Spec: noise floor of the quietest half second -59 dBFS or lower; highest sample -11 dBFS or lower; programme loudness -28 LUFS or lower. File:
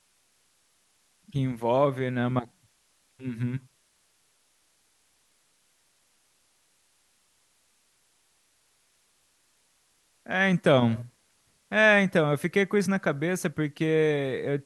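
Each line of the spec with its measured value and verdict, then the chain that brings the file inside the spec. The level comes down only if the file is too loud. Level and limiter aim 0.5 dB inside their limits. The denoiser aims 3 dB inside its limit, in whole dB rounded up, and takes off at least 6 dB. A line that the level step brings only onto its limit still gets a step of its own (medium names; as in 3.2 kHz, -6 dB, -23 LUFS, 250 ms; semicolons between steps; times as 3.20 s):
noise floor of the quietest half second -68 dBFS: pass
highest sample -7.5 dBFS: fail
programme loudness -25.5 LUFS: fail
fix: trim -3 dB; peak limiter -11.5 dBFS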